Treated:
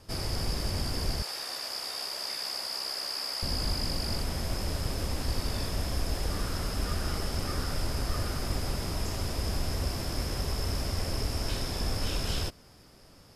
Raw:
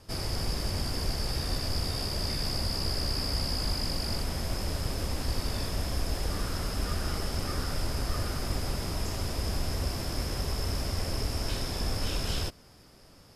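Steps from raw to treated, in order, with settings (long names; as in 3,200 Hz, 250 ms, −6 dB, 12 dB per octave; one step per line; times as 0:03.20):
0:01.22–0:03.43: high-pass filter 700 Hz 12 dB per octave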